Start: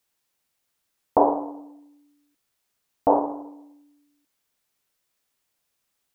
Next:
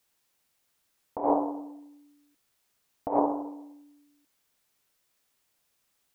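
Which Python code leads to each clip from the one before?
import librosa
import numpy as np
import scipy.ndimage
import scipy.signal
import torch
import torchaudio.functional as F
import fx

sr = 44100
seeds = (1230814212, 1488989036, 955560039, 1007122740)

y = fx.over_compress(x, sr, threshold_db=-22.0, ratio=-0.5)
y = F.gain(torch.from_numpy(y), -1.5).numpy()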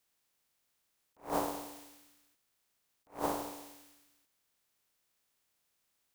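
y = fx.spec_flatten(x, sr, power=0.42)
y = fx.attack_slew(y, sr, db_per_s=220.0)
y = F.gain(torch.from_numpy(y), -4.5).numpy()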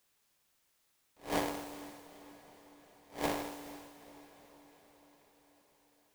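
y = fx.halfwave_hold(x, sr)
y = fx.quant_dither(y, sr, seeds[0], bits=12, dither='triangular')
y = fx.echo_diffused(y, sr, ms=451, feedback_pct=62, wet_db=-16.0)
y = F.gain(torch.from_numpy(y), -4.5).numpy()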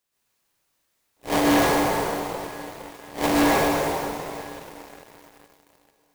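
y = fx.rev_plate(x, sr, seeds[1], rt60_s=2.2, hf_ratio=0.6, predelay_ms=105, drr_db=-9.0)
y = fx.leveller(y, sr, passes=3)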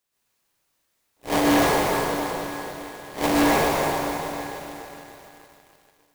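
y = fx.echo_crushed(x, sr, ms=296, feedback_pct=55, bits=9, wet_db=-9.5)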